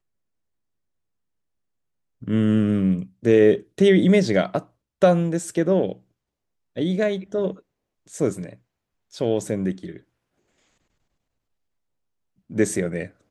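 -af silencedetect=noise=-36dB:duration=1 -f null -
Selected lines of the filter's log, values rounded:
silence_start: 0.00
silence_end: 2.22 | silence_duration: 2.22
silence_start: 9.97
silence_end: 12.50 | silence_duration: 2.53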